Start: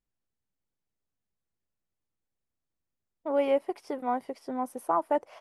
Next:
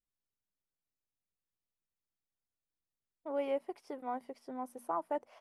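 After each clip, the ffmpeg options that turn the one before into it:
-af "bandreject=f=60:t=h:w=6,bandreject=f=120:t=h:w=6,bandreject=f=180:t=h:w=6,bandreject=f=240:t=h:w=6,volume=-9dB"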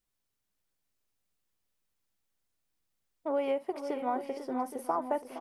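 -filter_complex "[0:a]acompressor=threshold=-35dB:ratio=6,asplit=2[a][b];[b]aecho=0:1:52|467|495|820:0.106|0.211|0.282|0.237[c];[a][c]amix=inputs=2:normalize=0,volume=8.5dB"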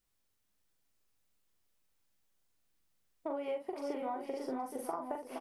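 -filter_complex "[0:a]acompressor=threshold=-37dB:ratio=10,asplit=2[a][b];[b]adelay=42,volume=-5dB[c];[a][c]amix=inputs=2:normalize=0,volume=1.5dB"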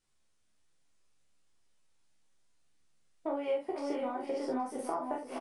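-af "aecho=1:1:13|28:0.668|0.562,aresample=22050,aresample=44100,volume=1.5dB"

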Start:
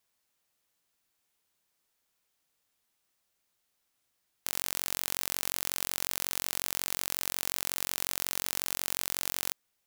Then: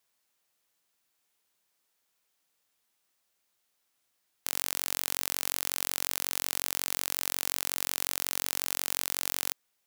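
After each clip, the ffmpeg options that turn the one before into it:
-af "lowshelf=f=170:g=-7.5,volume=1.5dB"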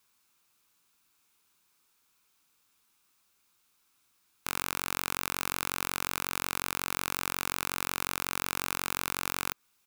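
-filter_complex "[0:a]acrossover=split=2500[a][b];[a]aecho=1:1:0.8:0.59[c];[b]alimiter=limit=-17dB:level=0:latency=1:release=117[d];[c][d]amix=inputs=2:normalize=0,volume=5.5dB"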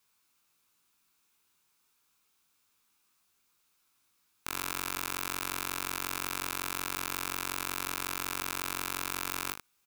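-af "aecho=1:1:19|78:0.531|0.355,volume=-3.5dB"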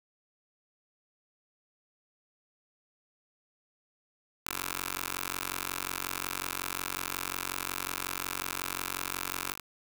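-af "aeval=exprs='val(0)*gte(abs(val(0)),0.00211)':c=same"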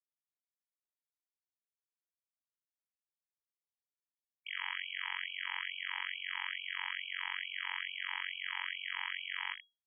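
-af "lowpass=f=2.8k:t=q:w=0.5098,lowpass=f=2.8k:t=q:w=0.6013,lowpass=f=2.8k:t=q:w=0.9,lowpass=f=2.8k:t=q:w=2.563,afreqshift=-3300,afftfilt=real='re*gte(b*sr/1024,760*pow(2300/760,0.5+0.5*sin(2*PI*2.3*pts/sr)))':imag='im*gte(b*sr/1024,760*pow(2300/760,0.5+0.5*sin(2*PI*2.3*pts/sr)))':win_size=1024:overlap=0.75"

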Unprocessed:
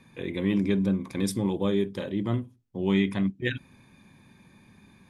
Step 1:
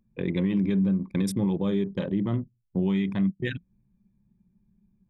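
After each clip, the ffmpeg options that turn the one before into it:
-af "anlmdn=3.98,equalizer=f=170:t=o:w=0.45:g=10,alimiter=limit=-21dB:level=0:latency=1:release=254,volume=4dB"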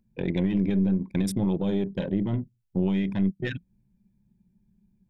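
-af "asuperstop=centerf=1200:order=4:qfactor=4.2,aeval=exprs='0.158*(cos(1*acos(clip(val(0)/0.158,-1,1)))-cos(1*PI/2))+0.0282*(cos(2*acos(clip(val(0)/0.158,-1,1)))-cos(2*PI/2))+0.00112*(cos(5*acos(clip(val(0)/0.158,-1,1)))-cos(5*PI/2))':c=same"

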